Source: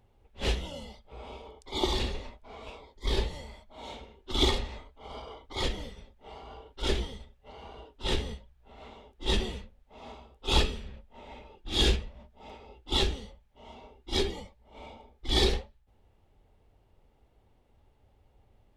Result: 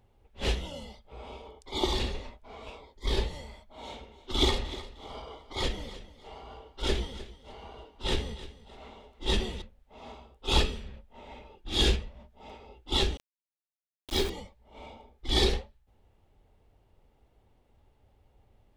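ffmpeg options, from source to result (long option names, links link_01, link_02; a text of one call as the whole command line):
ffmpeg -i in.wav -filter_complex "[0:a]asettb=1/sr,asplit=3[link_01][link_02][link_03];[link_01]atrim=end=3.814[link_04];[link_02]atrim=start=3.81:end=9.62,asetpts=PTS-STARTPTS,afade=type=in:duration=0.004:curve=qsin,afade=type=out:start_time=5.806:duration=0.004:curve=qsin,aecho=1:1:306|612|918:0.158|0.046|0.0133,atrim=end_sample=256221[link_05];[link_03]atrim=start=9.616[link_06];[link_04][link_05]acrossfade=duration=0.004:curve1=hsin:curve2=qsin[link_07];[link_07][link_06]acrossfade=duration=0.004:curve1=qsin:curve2=hsin,asettb=1/sr,asplit=3[link_08][link_09][link_10];[link_08]atrim=end=13.174[link_11];[link_09]atrim=start=13.17:end=14.3,asetpts=PTS-STARTPTS,afade=type=in:duration=0.004:curve=qsin,afade=type=out:start_time=1.126:duration=0.004:curve=qsin,aeval=exprs='val(0)*gte(abs(val(0)),0.02)':channel_layout=same[link_12];[link_10]atrim=start=14.296[link_13];[link_11][link_12]acrossfade=duration=0.004:curve1=hsin:curve2=qsin[link_14];[link_14][link_13]acrossfade=duration=0.004:curve1=qsin:curve2=hsin" out.wav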